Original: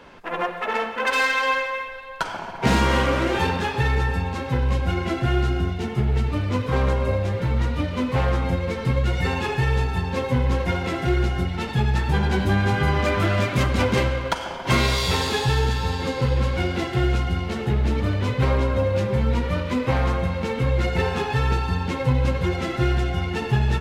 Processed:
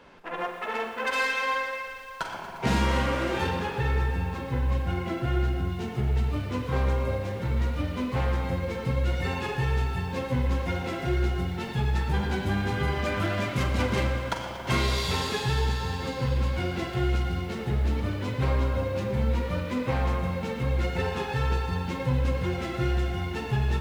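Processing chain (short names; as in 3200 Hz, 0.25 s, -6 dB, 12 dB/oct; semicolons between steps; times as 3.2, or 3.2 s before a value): 3.59–5.7 high shelf 4100 Hz -7 dB; flutter echo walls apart 7.6 m, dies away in 0.25 s; lo-fi delay 0.118 s, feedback 80%, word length 7-bit, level -13.5 dB; gain -6.5 dB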